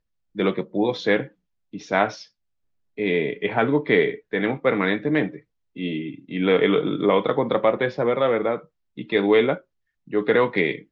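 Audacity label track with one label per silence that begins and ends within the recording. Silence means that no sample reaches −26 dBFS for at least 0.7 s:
2.090000	2.980000	silence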